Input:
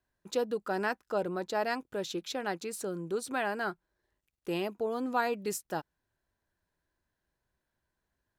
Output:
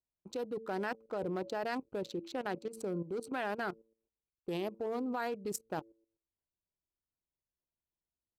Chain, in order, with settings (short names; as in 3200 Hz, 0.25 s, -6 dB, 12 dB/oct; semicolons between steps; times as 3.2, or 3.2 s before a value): Wiener smoothing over 25 samples; gate -55 dBFS, range -13 dB; de-hum 112 Hz, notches 5; limiter -24.5 dBFS, peak gain reduction 8 dB; level quantiser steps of 13 dB; gain +3.5 dB